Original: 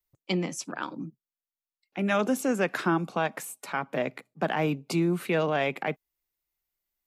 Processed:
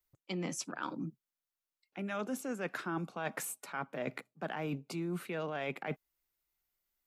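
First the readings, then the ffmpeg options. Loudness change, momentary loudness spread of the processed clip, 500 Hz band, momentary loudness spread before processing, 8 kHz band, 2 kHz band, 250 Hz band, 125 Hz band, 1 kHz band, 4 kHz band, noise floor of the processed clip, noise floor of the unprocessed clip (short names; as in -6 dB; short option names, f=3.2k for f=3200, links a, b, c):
-10.5 dB, 6 LU, -11.0 dB, 10 LU, -4.5 dB, -9.5 dB, -10.5 dB, -9.5 dB, -10.5 dB, -9.5 dB, under -85 dBFS, under -85 dBFS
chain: -af "equalizer=f=1.4k:w=4.1:g=3.5,areverse,acompressor=threshold=-35dB:ratio=6,areverse"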